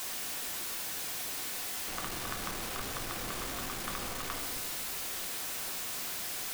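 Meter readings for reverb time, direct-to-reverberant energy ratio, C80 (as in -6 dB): 2.1 s, 1.5 dB, 6.5 dB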